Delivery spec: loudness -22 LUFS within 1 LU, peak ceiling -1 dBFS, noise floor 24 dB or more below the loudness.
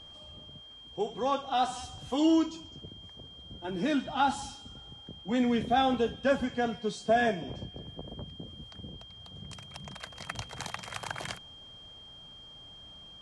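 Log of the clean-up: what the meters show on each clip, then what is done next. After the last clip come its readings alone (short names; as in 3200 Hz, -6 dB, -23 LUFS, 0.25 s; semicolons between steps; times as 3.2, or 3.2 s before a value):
steady tone 3200 Hz; tone level -48 dBFS; loudness -30.5 LUFS; peak -15.5 dBFS; loudness target -22.0 LUFS
-> notch 3200 Hz, Q 30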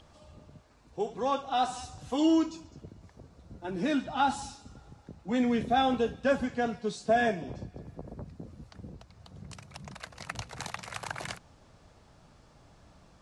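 steady tone none; loudness -30.5 LUFS; peak -15.5 dBFS; loudness target -22.0 LUFS
-> gain +8.5 dB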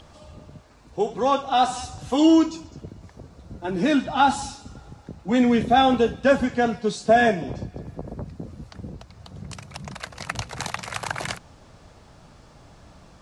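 loudness -22.0 LUFS; peak -7.0 dBFS; noise floor -51 dBFS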